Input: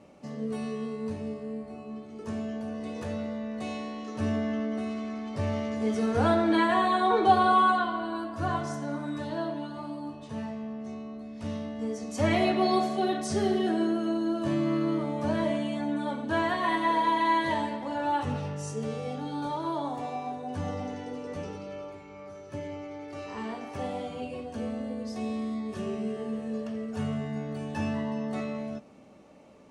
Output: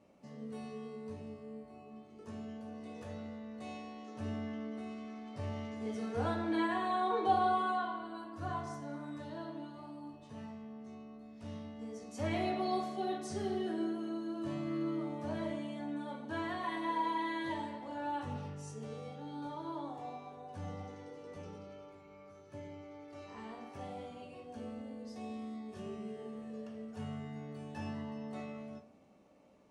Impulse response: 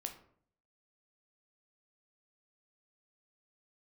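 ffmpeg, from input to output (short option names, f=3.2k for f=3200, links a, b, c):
-filter_complex "[0:a]asettb=1/sr,asplit=3[a][b][c];[a]atrim=end=19.084[d];[b]atrim=start=19.08:end=20.48,asetpts=PTS-STARTPTS,afade=t=in:d=0.004:c=qsin,afade=t=out:st=1.396:d=0.004:c=qsin,highshelf=f=6.7k:g=-5.5[e];[c]atrim=start=20.476[f];[d][e]acrossfade=d=0.004:c1=hsin:c2=qsin[g];[g][f]acrossfade=d=0.004:c1=qsin:c2=hsin[h];[1:a]atrim=start_sample=2205[i];[h][i]afir=irnorm=-1:irlink=0,volume=-8.5dB"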